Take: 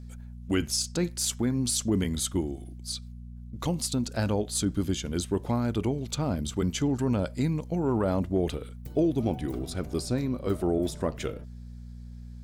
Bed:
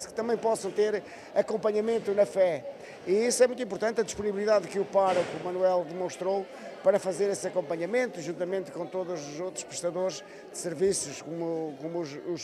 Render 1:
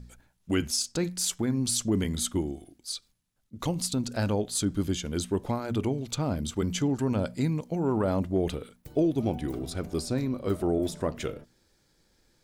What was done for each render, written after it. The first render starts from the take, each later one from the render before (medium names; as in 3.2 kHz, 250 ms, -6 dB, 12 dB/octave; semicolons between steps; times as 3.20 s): de-hum 60 Hz, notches 4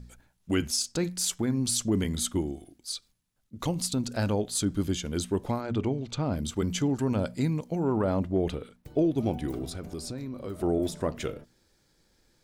5.61–6.33 s: distance through air 90 m; 7.84–9.17 s: treble shelf 6.5 kHz -9.5 dB; 9.68–10.63 s: compression 4:1, threshold -33 dBFS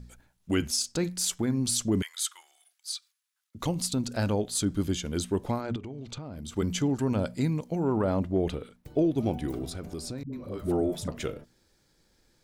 2.02–3.55 s: inverse Chebyshev high-pass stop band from 250 Hz, stop band 70 dB; 5.76–6.57 s: compression 16:1, threshold -34 dBFS; 10.23–11.08 s: phase dispersion highs, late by 98 ms, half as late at 330 Hz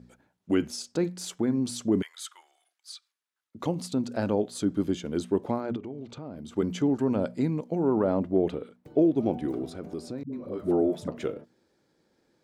high-pass 300 Hz 12 dB/octave; tilt EQ -3.5 dB/octave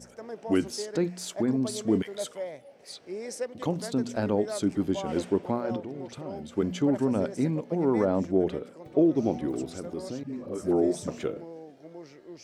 add bed -11.5 dB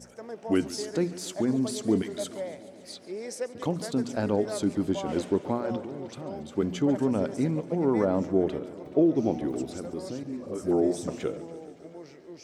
modulated delay 142 ms, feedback 74%, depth 105 cents, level -17.5 dB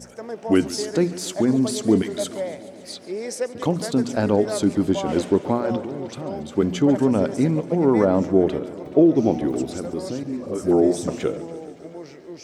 trim +7 dB